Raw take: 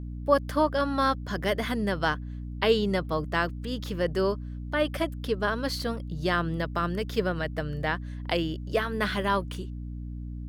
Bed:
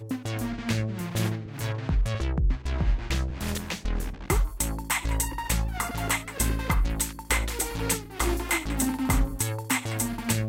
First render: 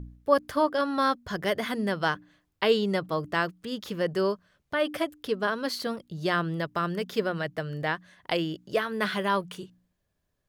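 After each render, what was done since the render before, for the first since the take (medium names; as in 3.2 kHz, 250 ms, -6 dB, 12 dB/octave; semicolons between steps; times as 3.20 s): de-hum 60 Hz, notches 5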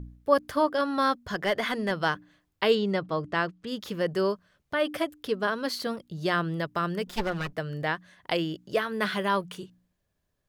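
1.34–1.91 s: overdrive pedal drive 10 dB, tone 4.2 kHz, clips at -16 dBFS; 2.75–3.67 s: distance through air 77 m; 7.07–7.53 s: comb filter that takes the minimum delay 5.6 ms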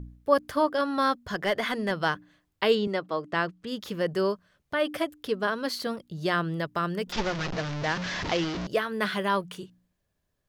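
2.87–3.33 s: high-pass 260 Hz; 7.12–8.67 s: one-bit delta coder 32 kbps, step -26 dBFS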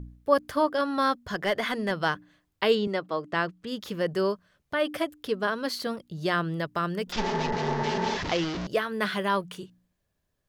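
7.24–8.14 s: spectral replace 230–2100 Hz before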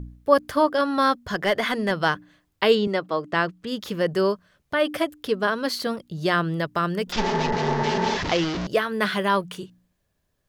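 trim +4.5 dB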